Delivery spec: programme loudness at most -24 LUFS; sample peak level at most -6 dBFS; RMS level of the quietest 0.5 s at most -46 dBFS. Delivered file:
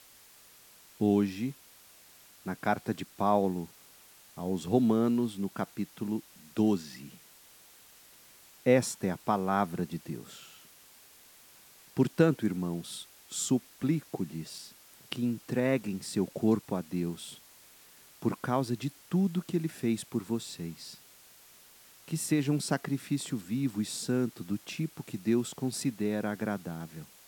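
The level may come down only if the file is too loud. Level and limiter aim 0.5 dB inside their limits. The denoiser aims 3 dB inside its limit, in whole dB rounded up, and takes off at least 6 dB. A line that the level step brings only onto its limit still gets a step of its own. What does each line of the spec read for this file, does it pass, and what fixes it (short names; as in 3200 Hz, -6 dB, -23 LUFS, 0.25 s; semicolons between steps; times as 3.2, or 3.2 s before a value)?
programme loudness -31.5 LUFS: OK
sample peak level -10.0 dBFS: OK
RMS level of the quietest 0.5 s -57 dBFS: OK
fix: none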